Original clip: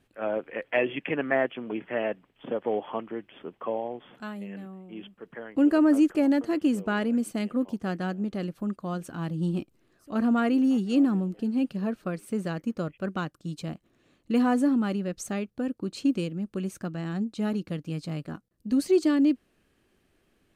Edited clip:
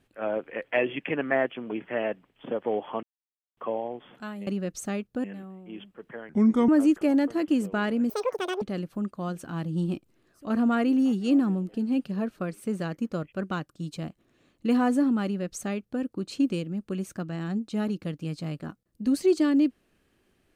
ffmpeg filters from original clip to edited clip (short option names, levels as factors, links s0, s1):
-filter_complex "[0:a]asplit=9[s0][s1][s2][s3][s4][s5][s6][s7][s8];[s0]atrim=end=3.03,asetpts=PTS-STARTPTS,afade=t=out:st=3.026:d=0.004:c=hsin[s9];[s1]atrim=start=3.03:end=3.57,asetpts=PTS-STARTPTS,volume=0[s10];[s2]atrim=start=3.57:end=4.472,asetpts=PTS-STARTPTS,afade=t=in:d=0.004:c=hsin[s11];[s3]atrim=start=14.898:end=15.672[s12];[s4]atrim=start=4.468:end=5.524[s13];[s5]atrim=start=5.52:end=5.82,asetpts=PTS-STARTPTS,asetrate=33516,aresample=44100[s14];[s6]atrim=start=5.816:end=7.234[s15];[s7]atrim=start=7.23:end=8.27,asetpts=PTS-STARTPTS,asetrate=87759,aresample=44100,atrim=end_sample=23047,asetpts=PTS-STARTPTS[s16];[s8]atrim=start=8.266[s17];[s9][s10][s11]concat=n=3:v=0:a=1[s18];[s18][s12]acrossfade=d=0.004:c1=hsin:c2=hsin[s19];[s19][s13]acrossfade=d=0.004:c1=hsin:c2=hsin[s20];[s20][s14]acrossfade=d=0.004:c1=hsin:c2=hsin[s21];[s21][s15]acrossfade=d=0.004:c1=hsin:c2=hsin[s22];[s22][s16]acrossfade=d=0.004:c1=hsin:c2=hsin[s23];[s23][s17]acrossfade=d=0.004:c1=hsin:c2=hsin"